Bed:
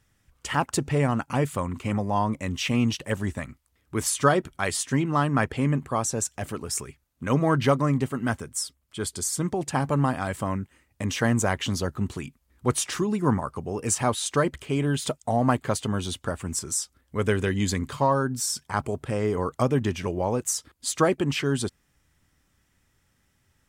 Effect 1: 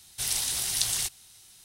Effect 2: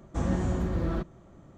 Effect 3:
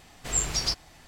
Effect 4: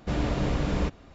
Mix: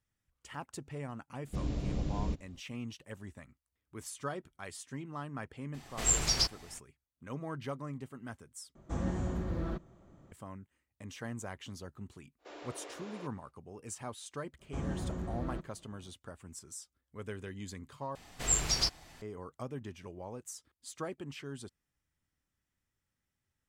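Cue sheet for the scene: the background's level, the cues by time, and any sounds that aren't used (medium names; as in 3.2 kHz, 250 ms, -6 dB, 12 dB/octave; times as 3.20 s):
bed -18.5 dB
1.46 s: add 4 -6 dB + peaking EQ 1.3 kHz -14 dB 2.8 oct
5.73 s: add 3 -1.5 dB, fades 0.02 s
8.75 s: replace with 2 -6.5 dB
12.38 s: add 4 -15 dB, fades 0.05 s + steep high-pass 340 Hz
14.58 s: add 2 -9.5 dB, fades 0.05 s
18.15 s: replace with 3 -2.5 dB
not used: 1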